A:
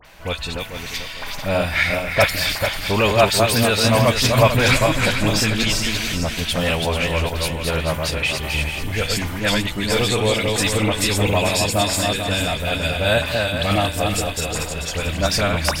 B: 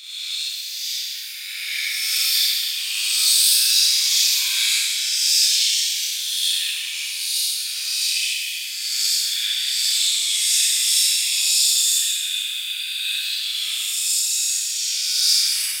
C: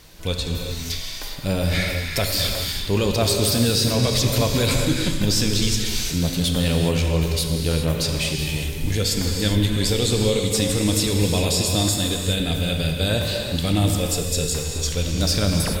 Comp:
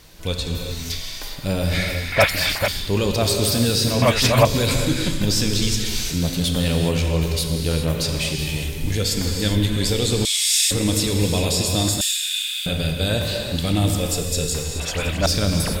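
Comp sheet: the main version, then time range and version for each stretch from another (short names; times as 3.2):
C
2.12–2.68 from A
4.02–4.45 from A
10.25–10.71 from B
12.01–12.66 from B
14.8–15.26 from A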